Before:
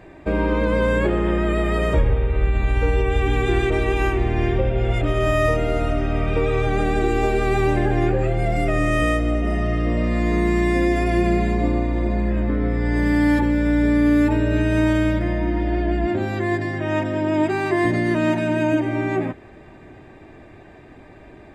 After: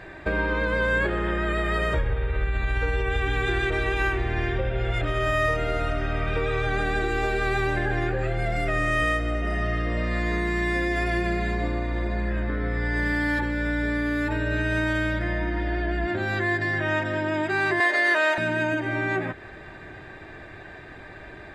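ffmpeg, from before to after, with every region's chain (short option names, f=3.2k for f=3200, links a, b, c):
-filter_complex "[0:a]asettb=1/sr,asplit=3[a][b][c];[a]atrim=end=17.804[d];[b]atrim=start=17.8:end=18.38,asetpts=PTS-STARTPTS,afade=t=in:d=0.004:c=qsin,afade=t=out:st=0.576:d=0.004:c=qsin,highpass=f=460:w=0.5412,highpass=f=460:w=1.3066,acontrast=21[e];[c]atrim=start=18.376[f];[d][e]acrossfade=d=0.004:c1=hsin:c2=qsin[g];[g][f]acrossfade=d=0.004:c1=qsin:c2=hsin,acompressor=threshold=-26dB:ratio=2.5,equalizer=f=250:t=o:w=0.67:g=-6,equalizer=f=1.6k:t=o:w=0.67:g=10,equalizer=f=4k:t=o:w=0.67:g=7,volume=1dB"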